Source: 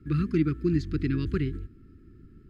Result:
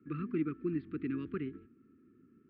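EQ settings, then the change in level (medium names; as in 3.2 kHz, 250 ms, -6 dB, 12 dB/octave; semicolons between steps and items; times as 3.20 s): distance through air 360 m; cabinet simulation 220–3700 Hz, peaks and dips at 240 Hz +7 dB, 460 Hz +3 dB, 700 Hz +3 dB, 1.2 kHz +7 dB, 2.5 kHz +5 dB; -8.0 dB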